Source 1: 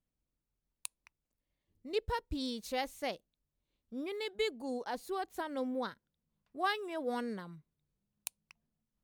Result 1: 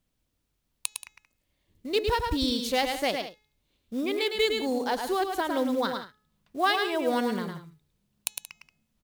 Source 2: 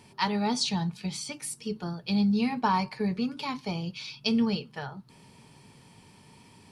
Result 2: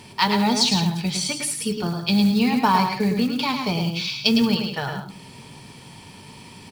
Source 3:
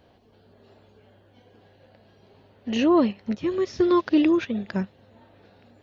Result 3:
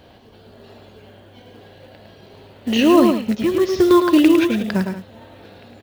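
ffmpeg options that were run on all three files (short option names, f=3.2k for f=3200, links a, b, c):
-filter_complex "[0:a]aecho=1:1:104|107|179:0.106|0.501|0.178,asplit=2[a][b];[b]acompressor=threshold=-33dB:ratio=12,volume=-1dB[c];[a][c]amix=inputs=2:normalize=0,equalizer=f=3.4k:w=1.2:g=3.5,acrusher=bits=6:mode=log:mix=0:aa=0.000001,bandreject=f=425.7:t=h:w=4,bandreject=f=851.4:t=h:w=4,bandreject=f=1.2771k:t=h:w=4,bandreject=f=1.7028k:t=h:w=4,bandreject=f=2.1285k:t=h:w=4,bandreject=f=2.5542k:t=h:w=4,bandreject=f=2.9799k:t=h:w=4,bandreject=f=3.4056k:t=h:w=4,bandreject=f=3.8313k:t=h:w=4,bandreject=f=4.257k:t=h:w=4,bandreject=f=4.6827k:t=h:w=4,bandreject=f=5.1084k:t=h:w=4,bandreject=f=5.5341k:t=h:w=4,bandreject=f=5.9598k:t=h:w=4,bandreject=f=6.3855k:t=h:w=4,bandreject=f=6.8112k:t=h:w=4,bandreject=f=7.2369k:t=h:w=4,bandreject=f=7.6626k:t=h:w=4,volume=4.5dB"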